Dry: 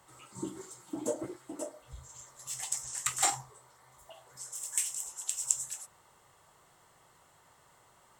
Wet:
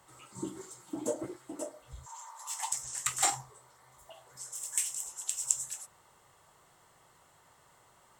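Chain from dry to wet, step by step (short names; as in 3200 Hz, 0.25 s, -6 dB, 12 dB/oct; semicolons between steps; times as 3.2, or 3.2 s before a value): 2.06–2.72 resonant high-pass 920 Hz, resonance Q 7.6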